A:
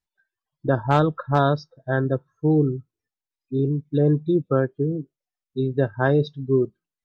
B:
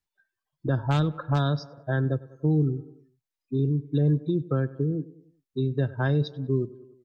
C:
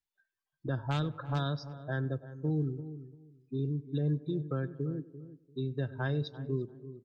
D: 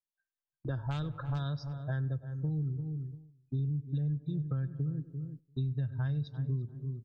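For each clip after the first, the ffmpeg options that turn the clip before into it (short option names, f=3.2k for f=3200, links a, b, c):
-filter_complex "[0:a]asplit=2[a][b];[b]adelay=97,lowpass=f=2.9k:p=1,volume=-21dB,asplit=2[c][d];[d]adelay=97,lowpass=f=2.9k:p=1,volume=0.49,asplit=2[e][f];[f]adelay=97,lowpass=f=2.9k:p=1,volume=0.49,asplit=2[g][h];[h]adelay=97,lowpass=f=2.9k:p=1,volume=0.49[i];[a][c][e][g][i]amix=inputs=5:normalize=0,acrossover=split=220|2100[j][k][l];[k]acompressor=threshold=-29dB:ratio=6[m];[j][m][l]amix=inputs=3:normalize=0"
-filter_complex "[0:a]equalizer=f=3.1k:w=0.52:g=4,asplit=2[a][b];[b]adelay=343,lowpass=f=940:p=1,volume=-13dB,asplit=2[c][d];[d]adelay=343,lowpass=f=940:p=1,volume=0.21[e];[a][c][e]amix=inputs=3:normalize=0,volume=-8.5dB"
-af "agate=range=-13dB:threshold=-54dB:ratio=16:detection=peak,asubboost=boost=12:cutoff=110,acompressor=threshold=-31dB:ratio=5"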